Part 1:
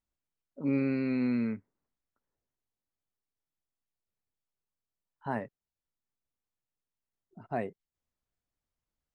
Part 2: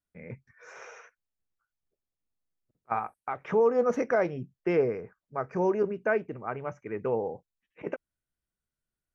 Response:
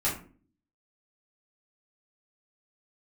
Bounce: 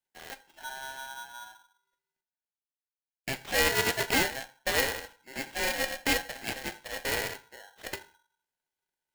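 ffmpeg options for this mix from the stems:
-filter_complex "[0:a]lowpass=1300,acompressor=threshold=-30dB:ratio=6,volume=-6.5dB,afade=type=out:start_time=1.04:duration=0.64:silence=0.375837,asplit=3[link_01][link_02][link_03];[link_02]volume=-11.5dB[link_04];[1:a]aeval=exprs='val(0)*sgn(sin(2*PI*270*n/s))':channel_layout=same,volume=-1.5dB,asplit=3[link_05][link_06][link_07];[link_05]atrim=end=2.21,asetpts=PTS-STARTPTS,afade=type=out:start_time=2.206:duration=0.004:curve=hsin[link_08];[link_06]atrim=start=2.21:end=3.24,asetpts=PTS-STARTPTS,volume=0[link_09];[link_07]atrim=start=3.24,asetpts=PTS-STARTPTS,afade=type=in:duration=0.004:curve=hsin[link_10];[link_08][link_09][link_10]concat=n=3:v=0:a=1,asplit=2[link_11][link_12];[link_12]volume=-18dB[link_13];[link_03]apad=whole_len=403159[link_14];[link_11][link_14]sidechaincompress=threshold=-49dB:ratio=8:attack=16:release=1330[link_15];[2:a]atrim=start_sample=2205[link_16];[link_04][link_13]amix=inputs=2:normalize=0[link_17];[link_17][link_16]afir=irnorm=-1:irlink=0[link_18];[link_01][link_15][link_18]amix=inputs=3:normalize=0,highpass=frequency=280:width=0.5412,highpass=frequency=280:width=1.3066,aeval=exprs='val(0)*sgn(sin(2*PI*1200*n/s))':channel_layout=same"

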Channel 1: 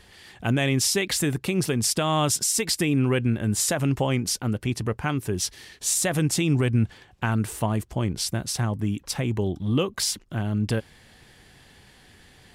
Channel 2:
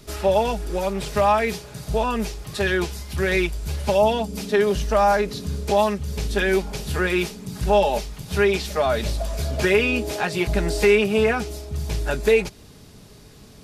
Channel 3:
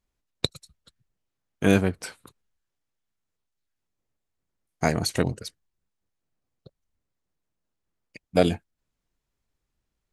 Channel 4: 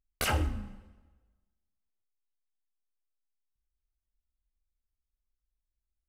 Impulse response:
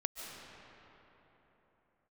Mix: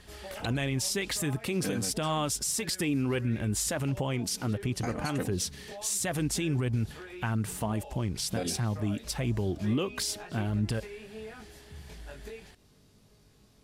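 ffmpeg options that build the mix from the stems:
-filter_complex "[0:a]aphaser=in_gain=1:out_gain=1:delay=4.7:decay=0.27:speed=1.5:type=triangular,volume=-3dB[link_01];[1:a]acompressor=threshold=-26dB:ratio=12,flanger=delay=19:depth=4.4:speed=0.3,volume=-12dB[link_02];[2:a]aecho=1:1:3.9:0.85,volume=-11.5dB[link_03];[3:a]acompressor=threshold=-42dB:ratio=1.5,adelay=100,volume=-9.5dB[link_04];[link_01][link_02][link_03][link_04]amix=inputs=4:normalize=0,alimiter=limit=-21dB:level=0:latency=1:release=98"

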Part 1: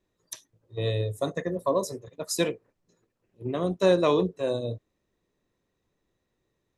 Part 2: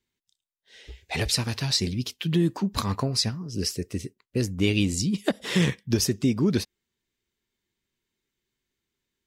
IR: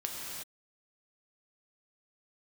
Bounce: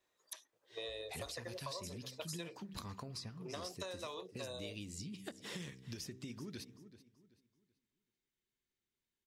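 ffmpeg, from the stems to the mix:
-filter_complex "[0:a]highpass=670,acompressor=threshold=-35dB:ratio=6,volume=1dB[link_01];[1:a]bandreject=frequency=64.19:width_type=h:width=4,bandreject=frequency=128.38:width_type=h:width=4,bandreject=frequency=192.57:width_type=h:width=4,bandreject=frequency=256.76:width_type=h:width=4,bandreject=frequency=320.95:width_type=h:width=4,bandreject=frequency=385.14:width_type=h:width=4,bandreject=frequency=449.33:width_type=h:width=4,acompressor=threshold=-30dB:ratio=2,volume=-10.5dB,asplit=2[link_02][link_03];[link_03]volume=-20dB,aecho=0:1:382|764|1146|1528:1|0.3|0.09|0.027[link_04];[link_01][link_02][link_04]amix=inputs=3:normalize=0,acrossover=split=1400|4000[link_05][link_06][link_07];[link_05]acompressor=threshold=-45dB:ratio=4[link_08];[link_06]acompressor=threshold=-53dB:ratio=4[link_09];[link_07]acompressor=threshold=-49dB:ratio=4[link_10];[link_08][link_09][link_10]amix=inputs=3:normalize=0"

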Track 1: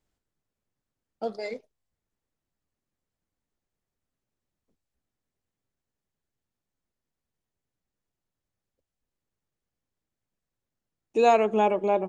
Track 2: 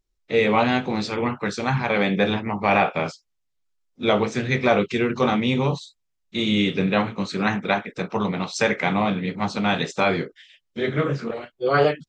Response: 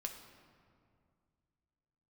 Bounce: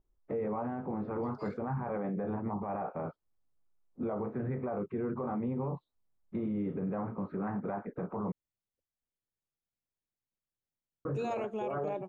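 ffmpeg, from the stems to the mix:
-filter_complex "[0:a]volume=-11.5dB,afade=type=in:start_time=1.34:duration=0.28:silence=0.398107[link_01];[1:a]lowpass=frequency=1200:width=0.5412,lowpass=frequency=1200:width=1.3066,alimiter=limit=-18.5dB:level=0:latency=1:release=468,acompressor=threshold=-32dB:ratio=3,volume=1.5dB,asplit=3[link_02][link_03][link_04];[link_02]atrim=end=8.32,asetpts=PTS-STARTPTS,afade=type=out:start_time=8.316:duration=0.004:curve=hsin[link_05];[link_03]atrim=start=8.32:end=11.05,asetpts=PTS-STARTPTS,volume=0[link_06];[link_04]atrim=start=11.05,asetpts=PTS-STARTPTS,afade=type=in:duration=0.004:curve=hsin[link_07];[link_05][link_06][link_07]concat=n=3:v=0:a=1[link_08];[link_01][link_08]amix=inputs=2:normalize=0,alimiter=level_in=3.5dB:limit=-24dB:level=0:latency=1:release=11,volume=-3.5dB"

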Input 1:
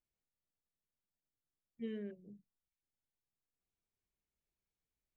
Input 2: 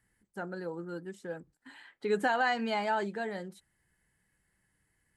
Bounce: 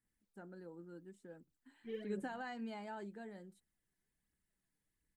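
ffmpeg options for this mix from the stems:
ffmpeg -i stem1.wav -i stem2.wav -filter_complex "[0:a]aphaser=in_gain=1:out_gain=1:delay=3.2:decay=0.78:speed=1.4:type=triangular,adelay=50,volume=-3.5dB[link_01];[1:a]equalizer=frequency=250:width=1.1:gain=10,aexciter=amount=2.1:drive=3.5:freq=7600,volume=-18.5dB[link_02];[link_01][link_02]amix=inputs=2:normalize=0" out.wav

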